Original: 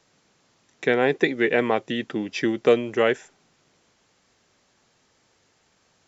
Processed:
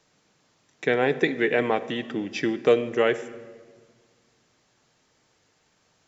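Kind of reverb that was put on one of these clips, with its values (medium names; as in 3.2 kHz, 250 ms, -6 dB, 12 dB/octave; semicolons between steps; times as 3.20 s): simulated room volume 2000 m³, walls mixed, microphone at 0.47 m; trim -2 dB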